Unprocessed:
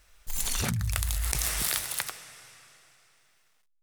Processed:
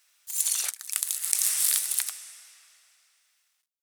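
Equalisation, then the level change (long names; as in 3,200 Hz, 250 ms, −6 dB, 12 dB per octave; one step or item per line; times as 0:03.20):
Bessel high-pass filter 770 Hz, order 6
high-shelf EQ 2,100 Hz +11.5 dB
dynamic equaliser 9,000 Hz, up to +7 dB, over −44 dBFS, Q 1
−10.0 dB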